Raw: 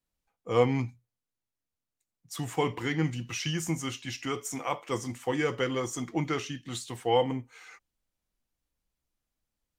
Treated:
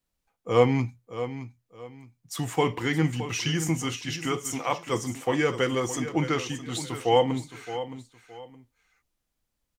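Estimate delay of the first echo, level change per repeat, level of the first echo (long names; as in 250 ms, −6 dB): 618 ms, −11.0 dB, −12.0 dB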